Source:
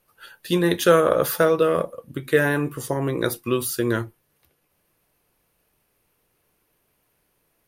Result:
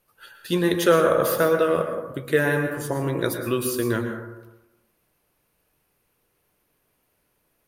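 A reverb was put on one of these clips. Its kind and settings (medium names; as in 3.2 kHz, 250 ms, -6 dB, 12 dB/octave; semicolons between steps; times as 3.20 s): plate-style reverb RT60 1 s, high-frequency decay 0.35×, pre-delay 100 ms, DRR 5 dB; trim -2 dB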